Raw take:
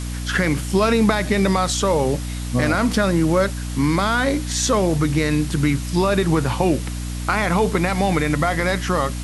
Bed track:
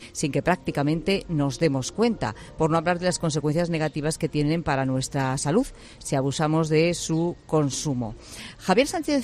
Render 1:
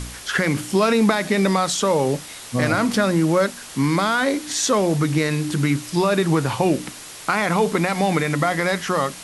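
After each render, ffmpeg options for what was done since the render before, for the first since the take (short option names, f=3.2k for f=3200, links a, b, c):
-af "bandreject=f=60:t=h:w=4,bandreject=f=120:t=h:w=4,bandreject=f=180:t=h:w=4,bandreject=f=240:t=h:w=4,bandreject=f=300:t=h:w=4"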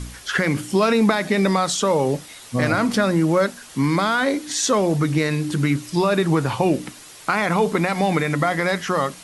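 -af "afftdn=nr=6:nf=-38"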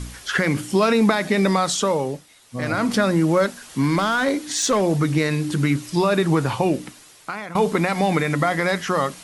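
-filter_complex "[0:a]asettb=1/sr,asplit=3[a][b][c];[a]atrim=end=3.434[d];[b]atrim=start=3.43:end=4.81,asetpts=PTS-STARTPTS,afade=t=in:d=0.004:c=qsin,afade=t=out:st=1.376:d=0.004:c=qsin,asoftclip=type=hard:threshold=-13dB[e];[c]atrim=start=4.806[f];[d][e]acrossfade=d=0.004:c1=hsin:c2=qsin[g];[g][f]acrossfade=d=0.004:c1=qsin:c2=hsin,asplit=4[h][i][j][k];[h]atrim=end=2.24,asetpts=PTS-STARTPTS,afade=t=out:st=1.8:d=0.44:silence=0.266073[l];[i]atrim=start=2.24:end=2.48,asetpts=PTS-STARTPTS,volume=-11.5dB[m];[j]atrim=start=2.48:end=7.55,asetpts=PTS-STARTPTS,afade=t=in:d=0.44:silence=0.266073,afade=t=out:st=4.01:d=1.06:silence=0.16788[n];[k]atrim=start=7.55,asetpts=PTS-STARTPTS,afade=t=in:d=0.004:c=hsin:silence=0.16788[o];[l][m][n][o]concat=n=4:v=0:a=1"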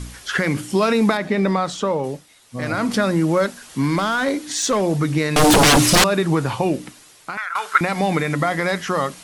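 -filter_complex "[0:a]asettb=1/sr,asplit=3[a][b][c];[a]atrim=end=1.174[d];[b]atrim=start=1.17:end=2.04,asetpts=PTS-STARTPTS,afade=t=in:d=0.004:c=qsin,afade=t=out:st=0.866:d=0.004:c=qsin,lowpass=f=2.2k:p=1[e];[c]atrim=start=2.036[f];[d][e]acrossfade=d=0.004:c1=hsin:c2=qsin[g];[g][f]acrossfade=d=0.004:c1=qsin:c2=hsin,asettb=1/sr,asplit=3[h][i][j];[h]atrim=end=5.364[k];[i]atrim=start=5.36:end=6.04,asetpts=PTS-STARTPTS,afade=t=in:d=0.004:c=qsin,afade=t=out:st=0.676:d=0.004:c=qsin,aeval=exprs='0.355*sin(PI/2*7.94*val(0)/0.355)':c=same[l];[j]atrim=start=6.036[m];[k][l]acrossfade=d=0.004:c1=hsin:c2=qsin[n];[n][m]acrossfade=d=0.004:c1=qsin:c2=hsin,asettb=1/sr,asplit=3[o][p][q];[o]atrim=end=7.374[r];[p]atrim=start=7.37:end=7.81,asetpts=PTS-STARTPTS,afade=t=in:d=0.004:c=qsin,afade=t=out:st=0.436:d=0.004:c=qsin,highpass=f=1.4k:t=q:w=7.9[s];[q]atrim=start=7.806[t];[r][s]acrossfade=d=0.004:c1=hsin:c2=qsin[u];[u][t]acrossfade=d=0.004:c1=qsin:c2=hsin"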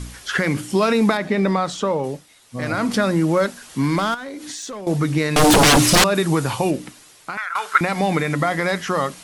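-filter_complex "[0:a]asettb=1/sr,asplit=3[a][b][c];[a]atrim=end=4.144[d];[b]atrim=start=4.14:end=4.87,asetpts=PTS-STARTPTS,afade=t=in:d=0.004:c=qsin,afade=t=out:st=0.726:d=0.004:c=qsin,acompressor=threshold=-28dB:ratio=16:attack=3.2:release=140:knee=1:detection=peak[e];[c]atrim=start=4.866[f];[d][e]acrossfade=d=0.004:c1=hsin:c2=qsin[g];[g][f]acrossfade=d=0.004:c1=qsin:c2=hsin,asettb=1/sr,asplit=3[h][i][j];[h]atrim=end=6.154[k];[i]atrim=start=6.15:end=6.71,asetpts=PTS-STARTPTS,afade=t=in:d=0.004:c=qsin,afade=t=out:st=0.556:d=0.004:c=qsin,aemphasis=mode=production:type=cd[l];[j]atrim=start=6.706[m];[k][l]acrossfade=d=0.004:c1=hsin:c2=qsin[n];[n][m]acrossfade=d=0.004:c1=qsin:c2=hsin"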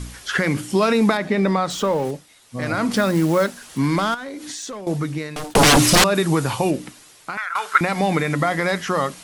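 -filter_complex "[0:a]asettb=1/sr,asplit=3[a][b][c];[a]atrim=end=1.704[d];[b]atrim=start=1.7:end=2.11,asetpts=PTS-STARTPTS,afade=t=in:d=0.004:c=qsin,afade=t=out:st=0.406:d=0.004:c=qsin,aeval=exprs='val(0)+0.5*0.0237*sgn(val(0))':c=same[e];[c]atrim=start=2.106[f];[d][e]acrossfade=d=0.004:c1=hsin:c2=qsin[g];[g][f]acrossfade=d=0.004:c1=qsin:c2=hsin,asettb=1/sr,asplit=3[h][i][j];[h]atrim=end=2.954[k];[i]atrim=start=2.95:end=3.78,asetpts=PTS-STARTPTS,afade=t=in:d=0.004:c=qsin,afade=t=out:st=0.826:d=0.004:c=qsin,acrusher=bits=5:mode=log:mix=0:aa=0.000001[l];[j]atrim=start=3.776[m];[k][l]acrossfade=d=0.004:c1=hsin:c2=qsin[n];[n][m]acrossfade=d=0.004:c1=qsin:c2=hsin,asplit=2[o][p];[o]atrim=end=5.55,asetpts=PTS-STARTPTS,afade=t=out:st=4.7:d=0.85[q];[p]atrim=start=5.55,asetpts=PTS-STARTPTS,afade=t=in:d=0.004:c=hsin[r];[q][r]concat=n=2:v=0:a=1"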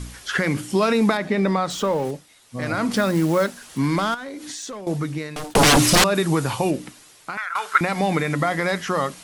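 -af "volume=-1.5dB"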